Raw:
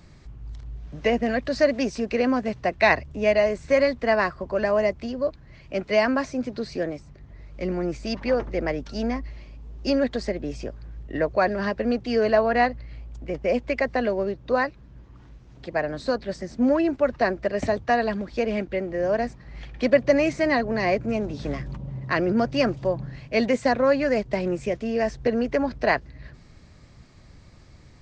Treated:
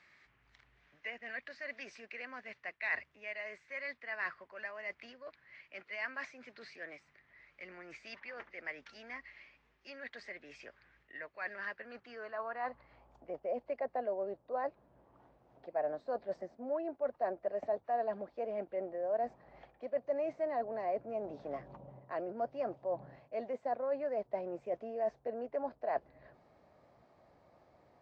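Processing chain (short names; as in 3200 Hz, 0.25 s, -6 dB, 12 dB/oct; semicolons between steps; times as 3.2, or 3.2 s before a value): reverse; compressor 8:1, threshold -29 dBFS, peak gain reduction 17 dB; reverse; band-pass sweep 2000 Hz -> 690 Hz, 11.5–13.43; gain +1 dB; AAC 48 kbps 22050 Hz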